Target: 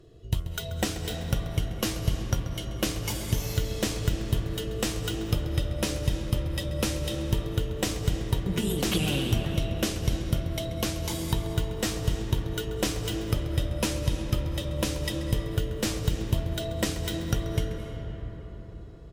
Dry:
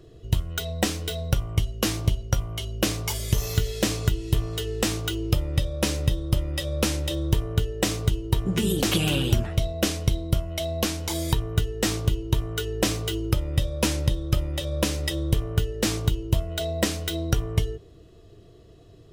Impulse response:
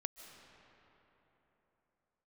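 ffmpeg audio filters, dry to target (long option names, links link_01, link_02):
-filter_complex "[0:a]asplit=2[link_01][link_02];[link_02]adelay=134.1,volume=-14dB,highshelf=frequency=4000:gain=-3.02[link_03];[link_01][link_03]amix=inputs=2:normalize=0[link_04];[1:a]atrim=start_sample=2205,asetrate=30429,aresample=44100[link_05];[link_04][link_05]afir=irnorm=-1:irlink=0,volume=-3dB"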